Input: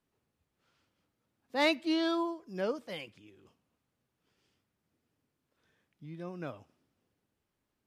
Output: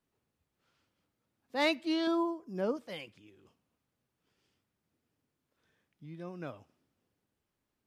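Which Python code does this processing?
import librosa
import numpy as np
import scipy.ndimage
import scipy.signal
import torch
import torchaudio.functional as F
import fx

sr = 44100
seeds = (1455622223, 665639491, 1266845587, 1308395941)

y = fx.graphic_eq(x, sr, hz=(250, 1000, 2000, 4000), db=(6, 3, -5, -6), at=(2.07, 2.77))
y = F.gain(torch.from_numpy(y), -1.5).numpy()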